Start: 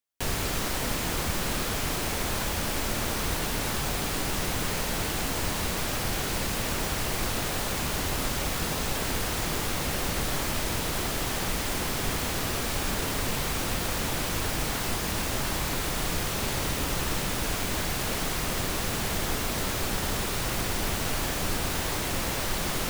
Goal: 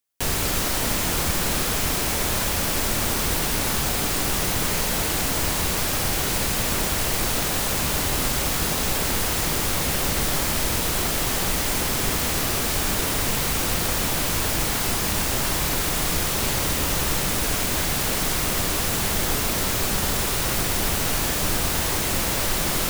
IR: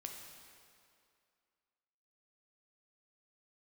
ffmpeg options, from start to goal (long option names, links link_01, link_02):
-filter_complex "[0:a]asplit=2[link_01][link_02];[1:a]atrim=start_sample=2205,highshelf=frequency=4600:gain=10[link_03];[link_02][link_03]afir=irnorm=-1:irlink=0,volume=0dB[link_04];[link_01][link_04]amix=inputs=2:normalize=0"